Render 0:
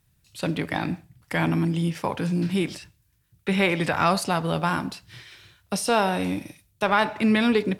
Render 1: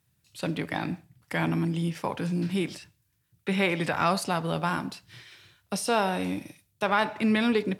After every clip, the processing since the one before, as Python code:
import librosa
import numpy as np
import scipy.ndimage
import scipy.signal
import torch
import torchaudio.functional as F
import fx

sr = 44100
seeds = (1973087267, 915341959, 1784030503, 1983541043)

y = scipy.signal.sosfilt(scipy.signal.butter(2, 92.0, 'highpass', fs=sr, output='sos'), x)
y = y * 10.0 ** (-3.5 / 20.0)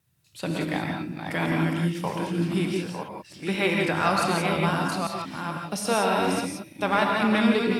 y = fx.reverse_delay(x, sr, ms=507, wet_db=-5)
y = fx.wow_flutter(y, sr, seeds[0], rate_hz=2.1, depth_cents=28.0)
y = fx.rev_gated(y, sr, seeds[1], gate_ms=200, shape='rising', drr_db=1.0)